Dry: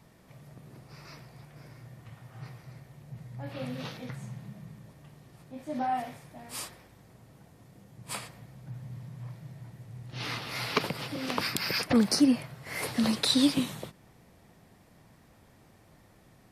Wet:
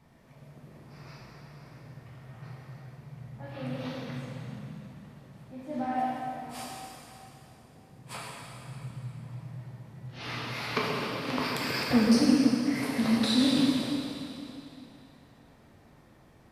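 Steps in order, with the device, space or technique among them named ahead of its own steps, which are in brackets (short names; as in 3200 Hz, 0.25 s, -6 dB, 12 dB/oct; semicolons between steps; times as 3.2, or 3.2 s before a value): swimming-pool hall (reverb RT60 2.9 s, pre-delay 6 ms, DRR -4.5 dB; high shelf 4600 Hz -8 dB); gain -3.5 dB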